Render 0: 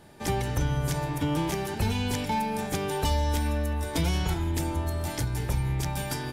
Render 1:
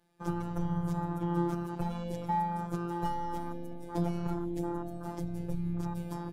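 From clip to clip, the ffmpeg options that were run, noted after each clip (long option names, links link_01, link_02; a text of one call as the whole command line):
ffmpeg -i in.wav -af "afwtdn=0.0282,afftfilt=real='hypot(re,im)*cos(PI*b)':imag='0':win_size=1024:overlap=0.75" out.wav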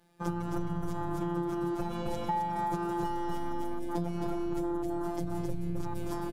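ffmpeg -i in.wav -af "aecho=1:1:264:0.668,acompressor=threshold=-34dB:ratio=6,volume=6dB" out.wav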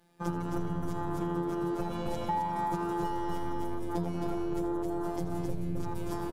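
ffmpeg -i in.wav -filter_complex "[0:a]asplit=5[link_01][link_02][link_03][link_04][link_05];[link_02]adelay=81,afreqshift=91,volume=-14dB[link_06];[link_03]adelay=162,afreqshift=182,volume=-20.7dB[link_07];[link_04]adelay=243,afreqshift=273,volume=-27.5dB[link_08];[link_05]adelay=324,afreqshift=364,volume=-34.2dB[link_09];[link_01][link_06][link_07][link_08][link_09]amix=inputs=5:normalize=0" out.wav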